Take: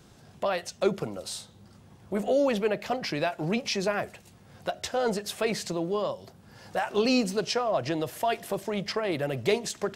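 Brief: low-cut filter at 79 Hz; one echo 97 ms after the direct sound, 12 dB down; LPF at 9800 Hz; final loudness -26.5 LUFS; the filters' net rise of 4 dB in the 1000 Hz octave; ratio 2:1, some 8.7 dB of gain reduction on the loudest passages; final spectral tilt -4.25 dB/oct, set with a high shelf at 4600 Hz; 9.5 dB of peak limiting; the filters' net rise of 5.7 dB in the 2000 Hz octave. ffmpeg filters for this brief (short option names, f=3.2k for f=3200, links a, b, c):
-af "highpass=79,lowpass=9.8k,equalizer=f=1k:t=o:g=4.5,equalizer=f=2k:t=o:g=7,highshelf=f=4.6k:g=-4.5,acompressor=threshold=-35dB:ratio=2,alimiter=level_in=2dB:limit=-24dB:level=0:latency=1,volume=-2dB,aecho=1:1:97:0.251,volume=10.5dB"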